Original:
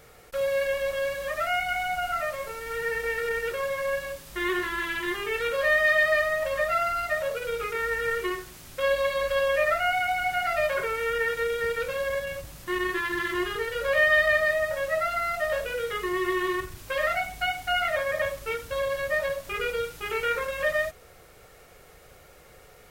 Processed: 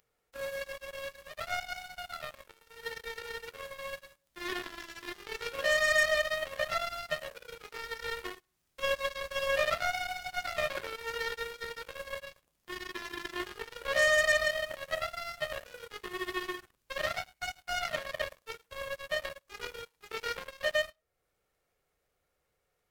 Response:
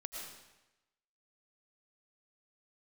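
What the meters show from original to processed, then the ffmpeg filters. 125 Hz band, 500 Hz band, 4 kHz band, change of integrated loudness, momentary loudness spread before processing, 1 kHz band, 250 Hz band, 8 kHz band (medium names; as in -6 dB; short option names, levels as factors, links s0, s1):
-8.5 dB, -9.0 dB, -2.0 dB, -7.0 dB, 8 LU, -9.5 dB, -12.0 dB, -1.5 dB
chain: -filter_complex "[0:a]acompressor=mode=upward:threshold=0.02:ratio=2.5,asplit=2[s0][s1];[1:a]atrim=start_sample=2205,atrim=end_sample=3528,adelay=106[s2];[s1][s2]afir=irnorm=-1:irlink=0,volume=0.473[s3];[s0][s3]amix=inputs=2:normalize=0,aeval=exprs='0.282*(cos(1*acos(clip(val(0)/0.282,-1,1)))-cos(1*PI/2))+0.00398*(cos(5*acos(clip(val(0)/0.282,-1,1)))-cos(5*PI/2))+0.0447*(cos(7*acos(clip(val(0)/0.282,-1,1)))-cos(7*PI/2))':c=same,volume=0.562"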